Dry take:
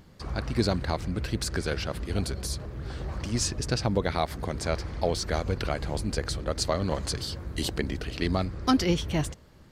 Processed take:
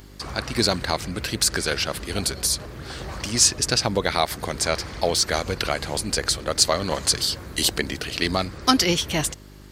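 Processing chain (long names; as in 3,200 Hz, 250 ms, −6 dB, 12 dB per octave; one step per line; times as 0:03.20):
spectral tilt +2.5 dB per octave
hum with harmonics 50 Hz, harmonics 8, −52 dBFS −4 dB per octave
level +6.5 dB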